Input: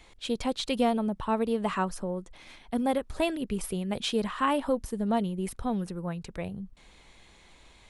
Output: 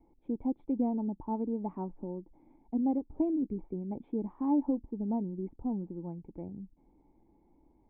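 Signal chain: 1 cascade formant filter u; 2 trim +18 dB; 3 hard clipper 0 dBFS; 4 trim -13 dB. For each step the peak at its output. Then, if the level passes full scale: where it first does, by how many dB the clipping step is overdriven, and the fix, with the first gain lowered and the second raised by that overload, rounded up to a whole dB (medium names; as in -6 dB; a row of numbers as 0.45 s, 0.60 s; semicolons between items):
-24.0 dBFS, -6.0 dBFS, -6.0 dBFS, -19.0 dBFS; nothing clips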